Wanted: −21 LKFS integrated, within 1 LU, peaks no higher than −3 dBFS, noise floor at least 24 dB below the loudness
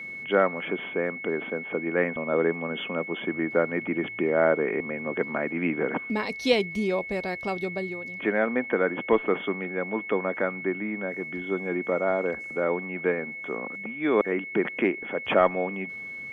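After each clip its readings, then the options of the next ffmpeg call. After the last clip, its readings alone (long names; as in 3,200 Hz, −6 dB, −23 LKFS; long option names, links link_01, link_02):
interfering tone 2,200 Hz; level of the tone −35 dBFS; integrated loudness −27.0 LKFS; sample peak −6.5 dBFS; target loudness −21.0 LKFS
→ -af "bandreject=frequency=2200:width=30"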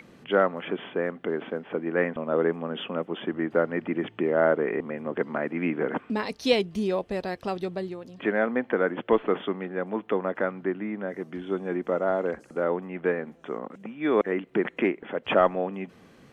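interfering tone none found; integrated loudness −28.0 LKFS; sample peak −7.0 dBFS; target loudness −21.0 LKFS
→ -af "volume=7dB,alimiter=limit=-3dB:level=0:latency=1"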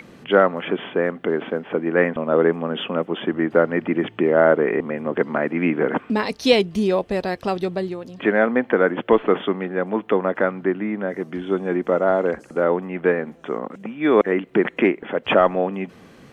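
integrated loudness −21.0 LKFS; sample peak −3.0 dBFS; background noise floor −48 dBFS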